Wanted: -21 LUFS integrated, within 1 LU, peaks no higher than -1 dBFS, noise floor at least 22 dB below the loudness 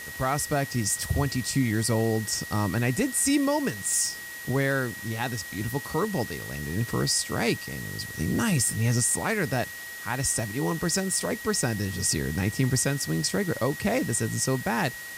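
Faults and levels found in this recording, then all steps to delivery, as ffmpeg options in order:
steady tone 1900 Hz; tone level -38 dBFS; noise floor -39 dBFS; noise floor target -49 dBFS; loudness -26.5 LUFS; peak -13.0 dBFS; loudness target -21.0 LUFS
-> -af "bandreject=f=1.9k:w=30"
-af "afftdn=nr=10:nf=-39"
-af "volume=5.5dB"

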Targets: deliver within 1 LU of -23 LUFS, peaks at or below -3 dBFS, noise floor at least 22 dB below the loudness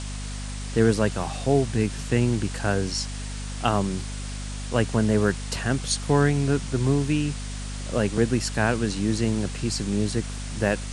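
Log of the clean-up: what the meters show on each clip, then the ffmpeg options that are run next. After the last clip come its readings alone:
hum 50 Hz; harmonics up to 250 Hz; hum level -30 dBFS; noise floor -33 dBFS; noise floor target -47 dBFS; loudness -25.0 LUFS; peak -6.0 dBFS; loudness target -23.0 LUFS
-> -af "bandreject=f=50:t=h:w=4,bandreject=f=100:t=h:w=4,bandreject=f=150:t=h:w=4,bandreject=f=200:t=h:w=4,bandreject=f=250:t=h:w=4"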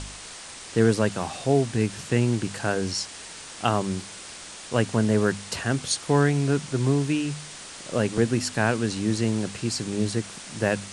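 hum none; noise floor -41 dBFS; noise floor target -47 dBFS
-> -af "afftdn=nr=6:nf=-41"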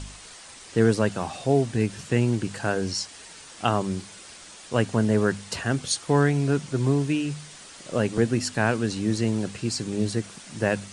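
noise floor -45 dBFS; noise floor target -48 dBFS
-> -af "afftdn=nr=6:nf=-45"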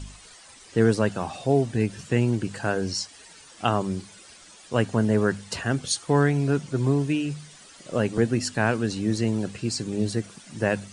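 noise floor -49 dBFS; loudness -25.5 LUFS; peak -7.0 dBFS; loudness target -23.0 LUFS
-> -af "volume=2.5dB"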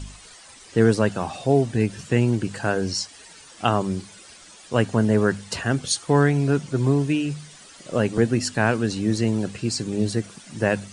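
loudness -23.0 LUFS; peak -4.5 dBFS; noise floor -47 dBFS

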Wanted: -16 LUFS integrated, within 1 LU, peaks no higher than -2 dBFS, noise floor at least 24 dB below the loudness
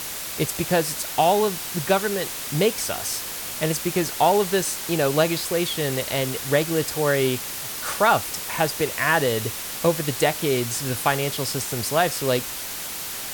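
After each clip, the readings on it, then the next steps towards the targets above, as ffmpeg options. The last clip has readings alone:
noise floor -32 dBFS; noise floor target -47 dBFS; loudness -23.0 LUFS; peak -6.0 dBFS; loudness target -16.0 LUFS
-> -af "afftdn=nr=15:nf=-32"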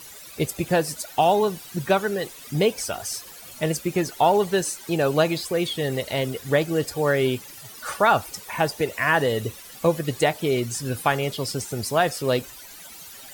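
noise floor -43 dBFS; noise floor target -48 dBFS
-> -af "afftdn=nr=6:nf=-43"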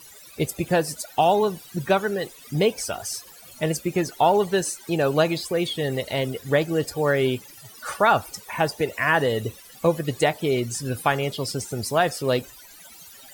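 noise floor -47 dBFS; noise floor target -48 dBFS
-> -af "afftdn=nr=6:nf=-47"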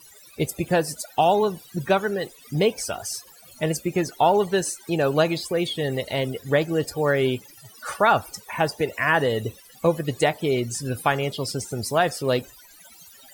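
noise floor -50 dBFS; loudness -24.0 LUFS; peak -6.5 dBFS; loudness target -16.0 LUFS
-> -af "volume=8dB,alimiter=limit=-2dB:level=0:latency=1"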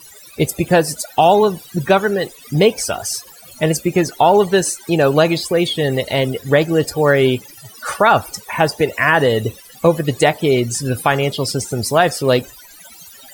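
loudness -16.5 LUFS; peak -2.0 dBFS; noise floor -42 dBFS

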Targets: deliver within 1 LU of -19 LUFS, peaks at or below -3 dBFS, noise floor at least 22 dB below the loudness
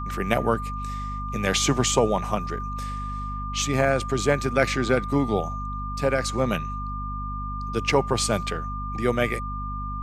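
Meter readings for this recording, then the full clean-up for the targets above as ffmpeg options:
hum 50 Hz; harmonics up to 250 Hz; hum level -30 dBFS; steady tone 1200 Hz; tone level -32 dBFS; loudness -25.5 LUFS; peak -6.0 dBFS; loudness target -19.0 LUFS
-> -af "bandreject=f=50:t=h:w=6,bandreject=f=100:t=h:w=6,bandreject=f=150:t=h:w=6,bandreject=f=200:t=h:w=6,bandreject=f=250:t=h:w=6"
-af "bandreject=f=1.2k:w=30"
-af "volume=6.5dB,alimiter=limit=-3dB:level=0:latency=1"

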